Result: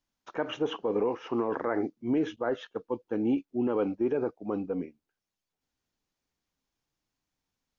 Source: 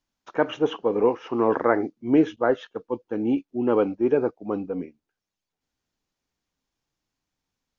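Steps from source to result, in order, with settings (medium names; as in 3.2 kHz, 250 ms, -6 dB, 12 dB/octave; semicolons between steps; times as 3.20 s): peak limiter -17 dBFS, peak gain reduction 9.5 dB; trim -2.5 dB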